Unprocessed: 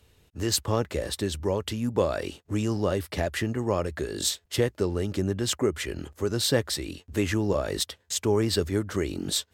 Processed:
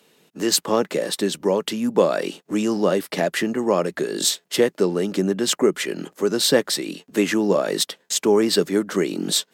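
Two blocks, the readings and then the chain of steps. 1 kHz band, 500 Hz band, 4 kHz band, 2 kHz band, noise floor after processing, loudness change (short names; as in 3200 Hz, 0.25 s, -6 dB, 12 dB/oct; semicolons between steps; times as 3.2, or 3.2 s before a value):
+7.0 dB, +7.5 dB, +6.5 dB, +6.5 dB, -67 dBFS, +6.5 dB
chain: Chebyshev high-pass 170 Hz, order 4; gain +7.5 dB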